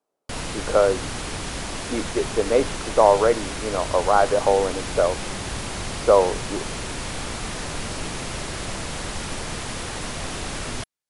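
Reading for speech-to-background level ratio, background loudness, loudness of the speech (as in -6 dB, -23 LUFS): 9.0 dB, -30.0 LUFS, -21.0 LUFS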